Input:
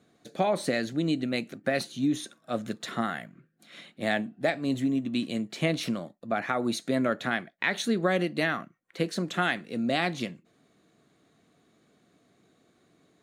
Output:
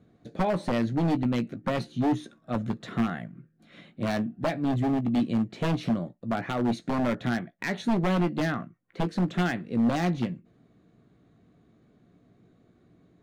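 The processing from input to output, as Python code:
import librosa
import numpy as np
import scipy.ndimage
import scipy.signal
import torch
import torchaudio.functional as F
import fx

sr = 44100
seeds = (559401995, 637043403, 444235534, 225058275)

y = fx.riaa(x, sr, side='playback')
y = 10.0 ** (-17.5 / 20.0) * (np.abs((y / 10.0 ** (-17.5 / 20.0) + 3.0) % 4.0 - 2.0) - 1.0)
y = fx.doubler(y, sr, ms=17.0, db=-11.0)
y = y * 10.0 ** (-2.0 / 20.0)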